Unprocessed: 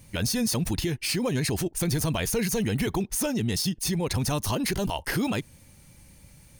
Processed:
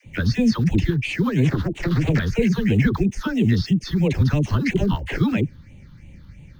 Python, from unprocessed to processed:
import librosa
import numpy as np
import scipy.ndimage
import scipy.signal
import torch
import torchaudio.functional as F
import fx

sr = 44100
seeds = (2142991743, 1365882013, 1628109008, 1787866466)

p1 = fx.self_delay(x, sr, depth_ms=0.94, at=(1.43, 2.19))
p2 = scipy.signal.sosfilt(scipy.signal.butter(2, 2600.0, 'lowpass', fs=sr, output='sos'), p1)
p3 = fx.quant_float(p2, sr, bits=2)
p4 = p2 + (p3 * 10.0 ** (-10.0 / 20.0))
p5 = fx.phaser_stages(p4, sr, stages=6, low_hz=610.0, high_hz=1400.0, hz=3.0, feedback_pct=35)
p6 = fx.dispersion(p5, sr, late='lows', ms=55.0, hz=480.0)
y = p6 * 10.0 ** (6.5 / 20.0)